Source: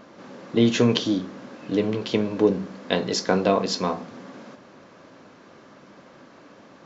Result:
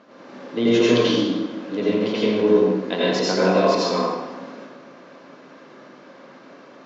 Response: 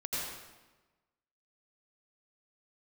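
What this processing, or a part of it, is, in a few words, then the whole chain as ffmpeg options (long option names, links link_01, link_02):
supermarket ceiling speaker: -filter_complex "[0:a]highpass=200,lowpass=5700[link_01];[1:a]atrim=start_sample=2205[link_02];[link_01][link_02]afir=irnorm=-1:irlink=0"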